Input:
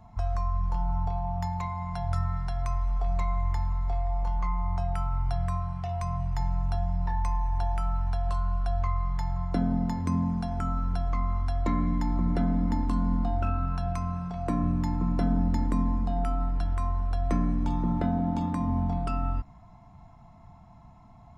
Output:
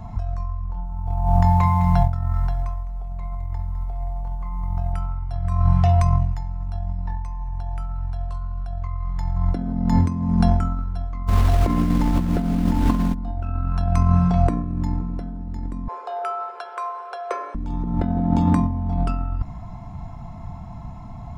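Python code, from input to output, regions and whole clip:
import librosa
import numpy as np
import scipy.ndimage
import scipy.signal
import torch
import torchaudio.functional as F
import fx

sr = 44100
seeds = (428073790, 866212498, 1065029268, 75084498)

y = fx.chain(x, sr, fx.lowpass(hz=2100.0, slope=6),
    fx.echo_crushed(ms=208, feedback_pct=55, bits=9, wet_db=-11), at=(0.64, 4.93))
y = fx.highpass(y, sr, hz=82.0, slope=6, at=(11.27, 13.13), fade=0.02)
y = fx.dmg_noise_colour(y, sr, seeds[0], colour='pink', level_db=-40.0, at=(11.27, 13.13), fade=0.02)
y = fx.high_shelf(y, sr, hz=4000.0, db=-10.0, at=(11.27, 13.13), fade=0.02)
y = fx.chain(y, sr, fx.cheby_ripple_highpass(hz=370.0, ripple_db=6),
    fx.high_shelf(hz=5100.0, db=-5.5),
    fx.notch(hz=1900.0, q=7.1), at=(15.88, 17.55))
y = fx.low_shelf(y, sr, hz=230.0, db=6.5)
y = fx.over_compress(y, sr, threshold_db=-26.0, ratio=-0.5)
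y = y * 10.0 ** (6.5 / 20.0)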